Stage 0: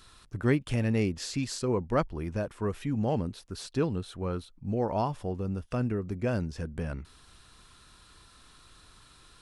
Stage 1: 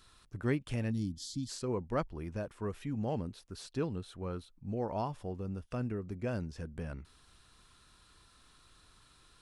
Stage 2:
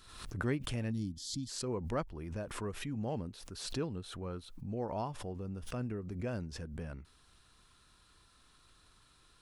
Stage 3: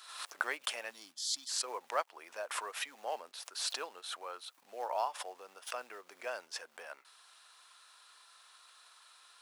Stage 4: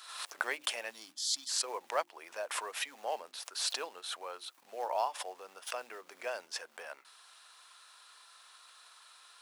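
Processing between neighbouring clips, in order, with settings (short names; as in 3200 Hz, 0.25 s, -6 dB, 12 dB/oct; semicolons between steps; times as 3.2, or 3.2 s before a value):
spectral gain 0.91–1.49, 330–3000 Hz -22 dB; gain -6.5 dB
backwards sustainer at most 61 dB/s; gain -2.5 dB
in parallel at -11.5 dB: short-mantissa float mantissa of 2-bit; on the sum: HPF 660 Hz 24 dB/oct; gain +4.5 dB
notches 50/100/150/200/250/300/350 Hz; dynamic EQ 1300 Hz, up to -4 dB, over -50 dBFS; gain +2.5 dB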